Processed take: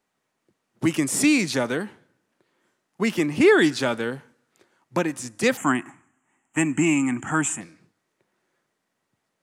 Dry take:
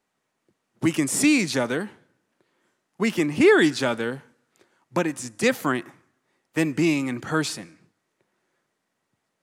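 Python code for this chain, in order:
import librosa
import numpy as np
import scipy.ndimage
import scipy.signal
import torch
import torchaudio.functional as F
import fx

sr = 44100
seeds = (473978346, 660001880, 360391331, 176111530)

y = fx.curve_eq(x, sr, hz=(170.0, 270.0, 500.0, 780.0, 1300.0, 3000.0, 4400.0, 7400.0, 14000.0), db=(0, 5, -12, 5, 2, 2, -30, 13, -15), at=(5.57, 7.61))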